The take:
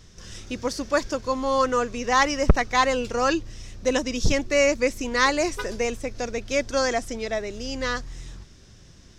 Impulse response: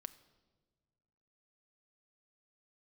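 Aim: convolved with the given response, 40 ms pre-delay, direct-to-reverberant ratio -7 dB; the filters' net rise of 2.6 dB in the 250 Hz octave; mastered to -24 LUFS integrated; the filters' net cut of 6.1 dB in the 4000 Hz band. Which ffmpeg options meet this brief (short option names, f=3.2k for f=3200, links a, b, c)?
-filter_complex "[0:a]equalizer=f=250:t=o:g=3,equalizer=f=4k:t=o:g=-8.5,asplit=2[a][b];[1:a]atrim=start_sample=2205,adelay=40[c];[b][c]afir=irnorm=-1:irlink=0,volume=12dB[d];[a][d]amix=inputs=2:normalize=0,volume=-7.5dB"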